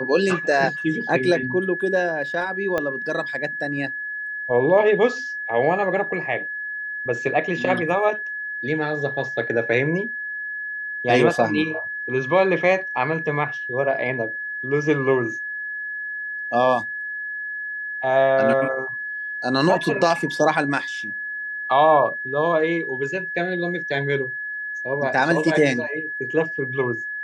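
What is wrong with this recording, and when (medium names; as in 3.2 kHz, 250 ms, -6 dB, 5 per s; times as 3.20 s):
whine 1.7 kHz -27 dBFS
2.78 s: pop -11 dBFS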